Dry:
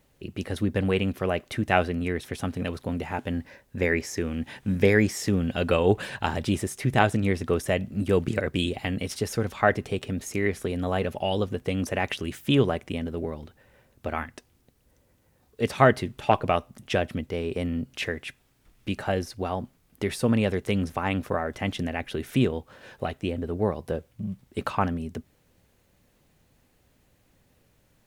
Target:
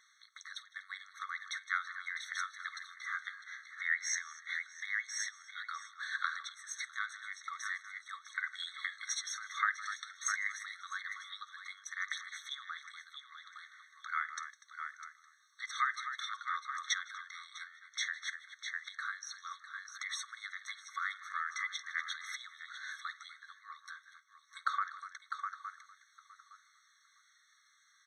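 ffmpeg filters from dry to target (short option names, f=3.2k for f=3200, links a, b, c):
-filter_complex "[0:a]bass=f=250:g=10,treble=f=4k:g=-6,asplit=2[a][b];[b]aecho=0:1:51|156|244|652:0.112|0.112|0.15|0.224[c];[a][c]amix=inputs=2:normalize=0,aphaser=in_gain=1:out_gain=1:delay=2.5:decay=0.28:speed=0.16:type=sinusoidal,asplit=2[d][e];[e]adelay=863,lowpass=f=2.5k:p=1,volume=-20dB,asplit=2[f][g];[g]adelay=863,lowpass=f=2.5k:p=1,volume=0.22[h];[f][h]amix=inputs=2:normalize=0[i];[d][i]amix=inputs=2:normalize=0,acompressor=threshold=-28dB:ratio=4,lowpass=f=6.1k:t=q:w=2.7,afftfilt=real='re*eq(mod(floor(b*sr/1024/1100),2),1)':imag='im*eq(mod(floor(b*sr/1024/1100),2),1)':win_size=1024:overlap=0.75,volume=5dB"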